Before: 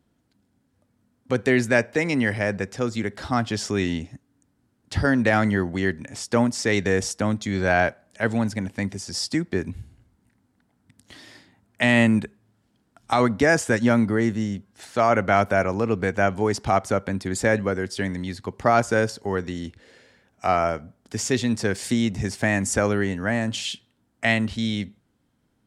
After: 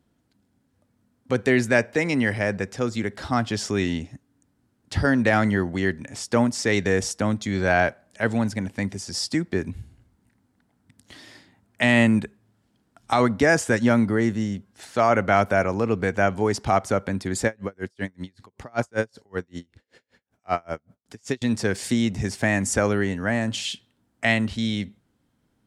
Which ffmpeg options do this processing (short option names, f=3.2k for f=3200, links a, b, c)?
-filter_complex "[0:a]asettb=1/sr,asplit=3[a][b][c];[a]atrim=end=17.464[d];[b]atrim=start=17.46:end=21.42,asetpts=PTS-STARTPTS,afade=t=in:d=0.004:c=qsin,afade=t=out:st=3.956:d=0.004:c=qsin,aeval=exprs='val(0)*pow(10,-37*(0.5-0.5*cos(2*PI*5.2*n/s))/20)':c=same[e];[c]atrim=start=21.416[f];[d][e]acrossfade=d=0.004:c1=hsin:c2=qsin[g];[g][f]acrossfade=d=0.004:c1=qsin:c2=hsin"